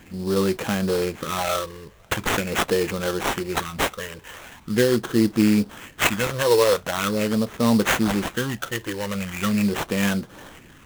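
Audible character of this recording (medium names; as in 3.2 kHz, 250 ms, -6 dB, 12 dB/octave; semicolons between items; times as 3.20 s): phasing stages 12, 0.42 Hz, lowest notch 220–3900 Hz; aliases and images of a low sample rate 4.8 kHz, jitter 20%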